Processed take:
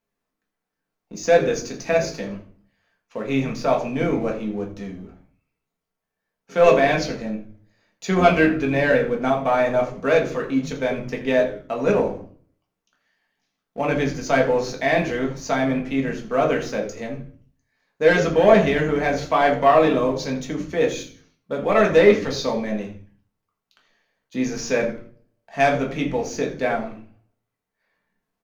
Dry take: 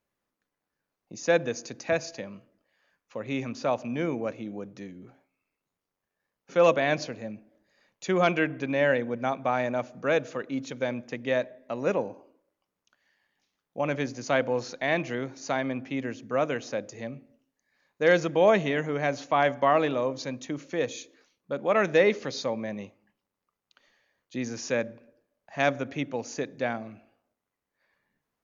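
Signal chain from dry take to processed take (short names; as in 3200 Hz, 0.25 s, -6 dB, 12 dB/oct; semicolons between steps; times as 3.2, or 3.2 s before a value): sample leveller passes 1; frequency-shifting echo 82 ms, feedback 33%, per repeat -110 Hz, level -14.5 dB; shoebox room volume 190 m³, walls furnished, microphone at 1.6 m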